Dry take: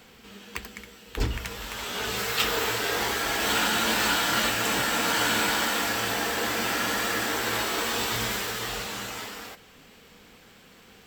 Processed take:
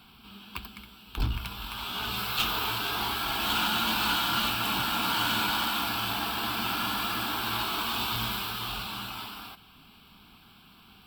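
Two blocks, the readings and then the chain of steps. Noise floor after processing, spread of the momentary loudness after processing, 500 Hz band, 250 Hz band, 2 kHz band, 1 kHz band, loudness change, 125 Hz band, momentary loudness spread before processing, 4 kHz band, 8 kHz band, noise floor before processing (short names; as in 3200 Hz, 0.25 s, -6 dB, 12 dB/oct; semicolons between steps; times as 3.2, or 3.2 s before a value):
-55 dBFS, 15 LU, -10.5 dB, -3.0 dB, -5.5 dB, -1.0 dB, -2.5 dB, -0.5 dB, 15 LU, -0.5 dB, -10.0 dB, -53 dBFS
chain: fixed phaser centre 1900 Hz, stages 6; tube stage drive 21 dB, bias 0.45; gain +2.5 dB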